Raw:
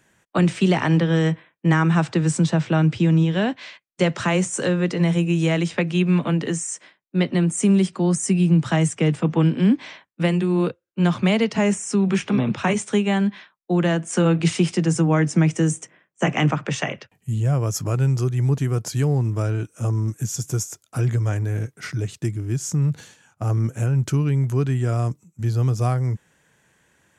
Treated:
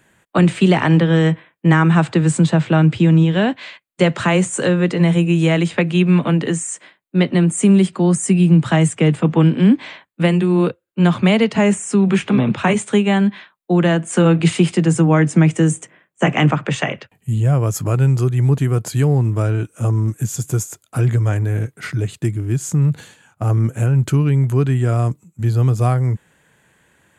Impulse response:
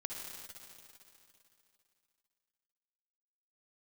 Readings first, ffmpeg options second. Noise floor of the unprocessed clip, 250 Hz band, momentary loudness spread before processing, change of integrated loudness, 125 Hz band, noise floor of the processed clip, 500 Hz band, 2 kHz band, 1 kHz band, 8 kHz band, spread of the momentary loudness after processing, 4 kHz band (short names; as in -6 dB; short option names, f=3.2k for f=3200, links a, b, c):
-69 dBFS, +5.0 dB, 9 LU, +5.0 dB, +5.0 dB, -64 dBFS, +5.0 dB, +5.0 dB, +5.0 dB, +2.5 dB, 9 LU, +4.0 dB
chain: -af "equalizer=f=5.6k:t=o:w=0.36:g=-11,volume=5dB"